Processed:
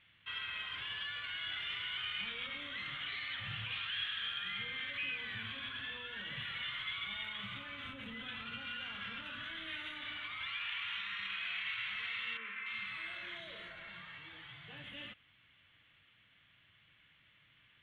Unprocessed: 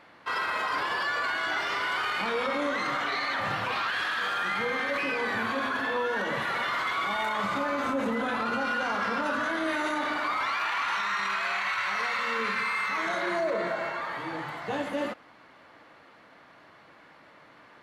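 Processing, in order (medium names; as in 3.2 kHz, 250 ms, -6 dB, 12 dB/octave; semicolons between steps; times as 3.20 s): FFT filter 110 Hz 0 dB, 280 Hz -20 dB, 580 Hz -25 dB, 900 Hz -25 dB, 3.3 kHz +4 dB, 4.9 kHz -28 dB, 10 kHz -20 dB; 12.37–14.84 s: three bands offset in time mids, highs, lows 290/330 ms, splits 210/2600 Hz; trim -3 dB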